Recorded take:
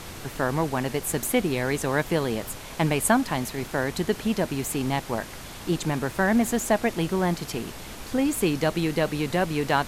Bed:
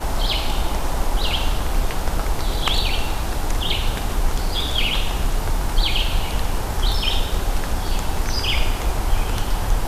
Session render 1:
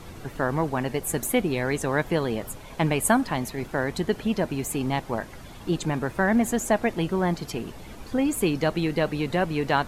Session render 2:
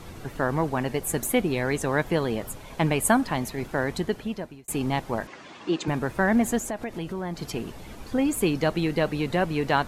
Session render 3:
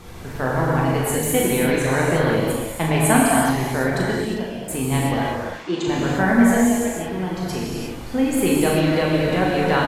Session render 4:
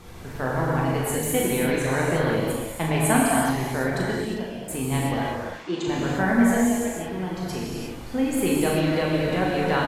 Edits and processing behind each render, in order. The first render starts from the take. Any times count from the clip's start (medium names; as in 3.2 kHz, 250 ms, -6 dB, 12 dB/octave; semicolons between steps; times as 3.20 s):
noise reduction 10 dB, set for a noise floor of -40 dBFS
3.93–4.68 s: fade out; 5.27–5.88 s: cabinet simulation 260–6900 Hz, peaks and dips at 320 Hz +4 dB, 1.1 kHz +5 dB, 1.8 kHz +4 dB, 2.6 kHz +5 dB; 6.58–7.42 s: compression 3:1, threshold -30 dBFS
doubling 38 ms -5.5 dB; gated-style reverb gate 380 ms flat, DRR -4 dB
trim -4 dB